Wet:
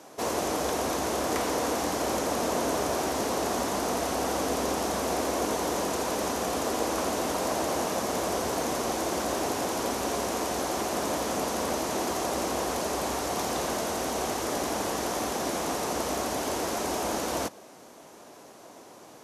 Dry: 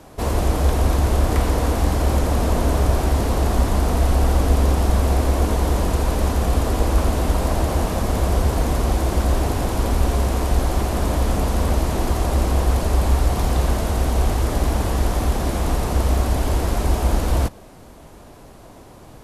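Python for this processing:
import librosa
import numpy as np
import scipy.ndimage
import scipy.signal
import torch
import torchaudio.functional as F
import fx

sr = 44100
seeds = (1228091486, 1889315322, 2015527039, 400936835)

y = scipy.signal.sosfilt(scipy.signal.butter(2, 290.0, 'highpass', fs=sr, output='sos'), x)
y = fx.peak_eq(y, sr, hz=6100.0, db=6.5, octaves=0.49)
y = y * 10.0 ** (-3.0 / 20.0)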